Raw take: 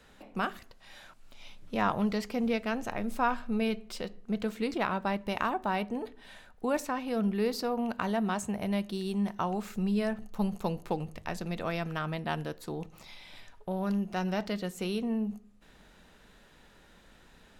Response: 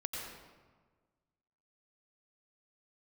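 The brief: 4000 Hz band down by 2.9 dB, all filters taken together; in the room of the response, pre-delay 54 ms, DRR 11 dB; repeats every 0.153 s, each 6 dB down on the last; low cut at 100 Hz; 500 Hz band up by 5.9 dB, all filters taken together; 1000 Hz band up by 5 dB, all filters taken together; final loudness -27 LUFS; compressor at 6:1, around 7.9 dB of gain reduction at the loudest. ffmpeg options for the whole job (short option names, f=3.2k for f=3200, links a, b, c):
-filter_complex "[0:a]highpass=100,equalizer=f=500:t=o:g=6,equalizer=f=1k:t=o:g=4.5,equalizer=f=4k:t=o:g=-4.5,acompressor=threshold=-27dB:ratio=6,aecho=1:1:153|306|459|612|765|918:0.501|0.251|0.125|0.0626|0.0313|0.0157,asplit=2[a][b];[1:a]atrim=start_sample=2205,adelay=54[c];[b][c]afir=irnorm=-1:irlink=0,volume=-12.5dB[d];[a][d]amix=inputs=2:normalize=0,volume=5dB"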